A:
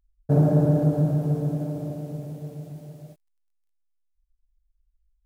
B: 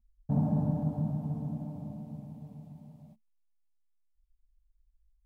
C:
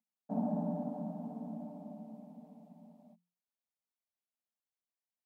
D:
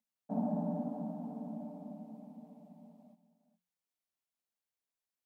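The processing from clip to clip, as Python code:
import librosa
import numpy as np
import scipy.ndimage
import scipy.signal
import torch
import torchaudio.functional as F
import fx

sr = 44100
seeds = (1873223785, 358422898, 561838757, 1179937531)

y1 = fx.curve_eq(x, sr, hz=(100.0, 150.0, 220.0, 320.0, 520.0, 900.0, 1500.0, 2300.0, 3600.0, 6000.0), db=(0, -12, 9, -22, -20, -3, -20, -15, -16, -19))
y2 = scipy.signal.sosfilt(scipy.signal.cheby1(6, 9, 170.0, 'highpass', fs=sr, output='sos'), y1)
y2 = y2 * librosa.db_to_amplitude(2.0)
y3 = y2 + 10.0 ** (-15.0 / 20.0) * np.pad(y2, (int(413 * sr / 1000.0), 0))[:len(y2)]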